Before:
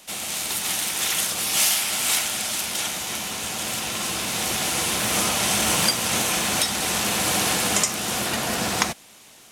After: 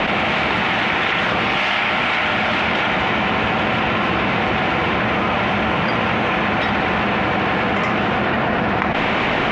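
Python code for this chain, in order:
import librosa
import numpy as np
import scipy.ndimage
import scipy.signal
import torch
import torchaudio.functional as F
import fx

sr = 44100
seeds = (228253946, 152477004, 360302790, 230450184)

y = scipy.signal.sosfilt(scipy.signal.butter(4, 2400.0, 'lowpass', fs=sr, output='sos'), x)
y = fx.env_flatten(y, sr, amount_pct=100)
y = y * 10.0 ** (2.0 / 20.0)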